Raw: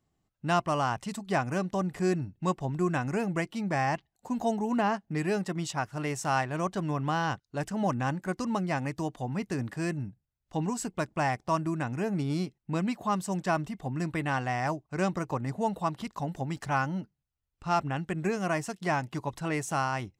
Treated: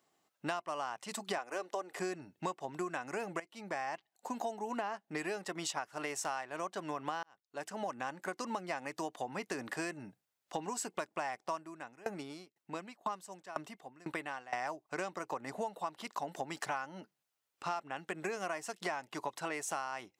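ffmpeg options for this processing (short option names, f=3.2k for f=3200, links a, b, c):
-filter_complex "[0:a]asettb=1/sr,asplit=3[a][b][c];[a]atrim=end=1.384[d];[b]atrim=start=1.38:end=1.98,asetpts=PTS-STARTPTS,afade=t=in:d=0.004:c=qsin,afade=t=out:st=0.596:d=0.004:c=qsin,lowshelf=f=260:t=q:w=1.5:g=-12[e];[c]atrim=start=1.976[f];[d][e]acrossfade=d=0.004:c1=hsin:c2=qsin[g];[g][f]acrossfade=d=0.004:c1=qsin:c2=hsin,asettb=1/sr,asplit=3[h][i][j];[h]atrim=end=11.564[k];[i]atrim=start=11.56:end=14.53,asetpts=PTS-STARTPTS,afade=t=in:d=0.004:c=qsin,afade=t=out:st=2.966:d=0.004:c=qsin,aeval=exprs='val(0)*pow(10,-29*if(lt(mod(2*n/s,1),2*abs(2)/1000),1-mod(2*n/s,1)/(2*abs(2)/1000),(mod(2*n/s,1)-2*abs(2)/1000)/(1-2*abs(2)/1000))/20)':c=same[l];[j]atrim=start=14.526[m];[k][l]acrossfade=d=0.004:c1=hsin:c2=qsin[n];[n][m]acrossfade=d=0.004:c1=qsin:c2=hsin,asplit=3[o][p][q];[o]atrim=end=3.4,asetpts=PTS-STARTPTS,afade=t=out:st=3.396:d=0.004:c=hsin:silence=0.199526[r];[p]atrim=start=3.4:end=7.23,asetpts=PTS-STARTPTS,afade=t=in:d=1.63:silence=0.199526,afade=t=out:st=3.826:d=0.004:c=hsin[s];[q]atrim=start=7.23,asetpts=PTS-STARTPTS,afade=t=in:d=1.56[t];[r][s][t]concat=n=3:v=0:a=1,highpass=450,acompressor=threshold=-42dB:ratio=10,volume=7.5dB"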